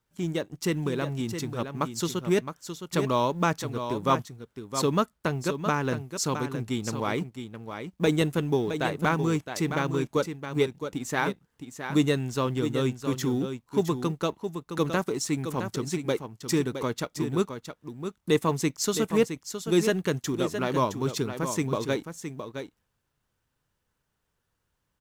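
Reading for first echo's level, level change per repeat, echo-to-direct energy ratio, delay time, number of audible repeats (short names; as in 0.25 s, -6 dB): -8.5 dB, no steady repeat, -8.5 dB, 0.665 s, 1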